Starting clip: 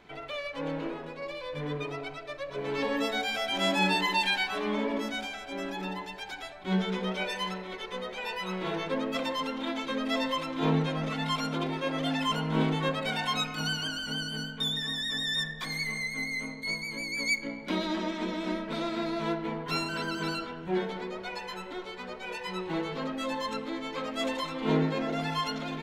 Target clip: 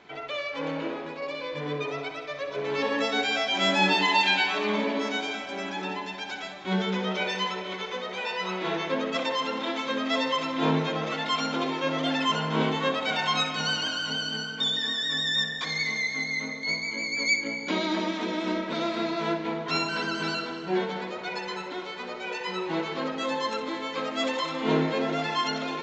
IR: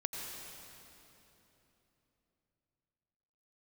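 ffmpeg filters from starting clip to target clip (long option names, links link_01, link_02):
-filter_complex "[0:a]highpass=frequency=230:poles=1,asplit=2[link_01][link_02];[1:a]atrim=start_sample=2205,adelay=62[link_03];[link_02][link_03]afir=irnorm=-1:irlink=0,volume=-9dB[link_04];[link_01][link_04]amix=inputs=2:normalize=0,aresample=16000,aresample=44100,volume=4dB"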